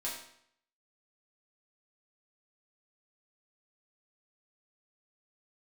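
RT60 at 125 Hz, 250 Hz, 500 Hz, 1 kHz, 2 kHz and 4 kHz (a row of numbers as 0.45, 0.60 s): 0.65, 0.65, 0.65, 0.65, 0.65, 0.60 s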